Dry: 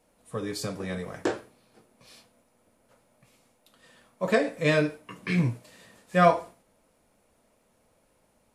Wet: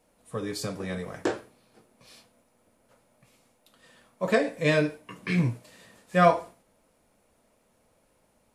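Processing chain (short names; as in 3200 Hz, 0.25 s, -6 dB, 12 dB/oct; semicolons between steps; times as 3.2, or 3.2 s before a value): 4.42–5.12 notch 1300 Hz, Q 9.6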